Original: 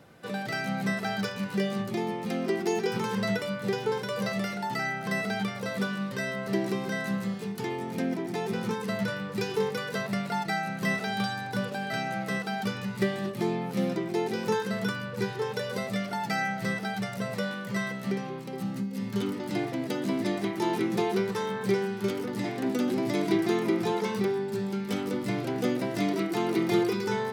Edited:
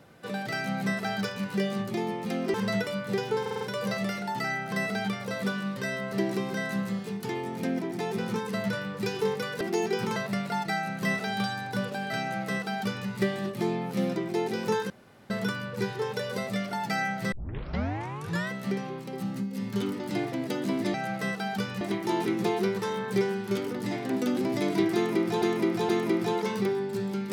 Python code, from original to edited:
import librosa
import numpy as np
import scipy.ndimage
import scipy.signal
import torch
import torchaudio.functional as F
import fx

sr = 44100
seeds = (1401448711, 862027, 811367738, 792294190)

y = fx.edit(x, sr, fx.move(start_s=2.54, length_s=0.55, to_s=9.96),
    fx.stutter(start_s=3.96, slice_s=0.05, count=5),
    fx.duplicate(start_s=12.01, length_s=0.87, to_s=20.34),
    fx.insert_room_tone(at_s=14.7, length_s=0.4),
    fx.tape_start(start_s=16.72, length_s=1.18),
    fx.repeat(start_s=23.48, length_s=0.47, count=3), tone=tone)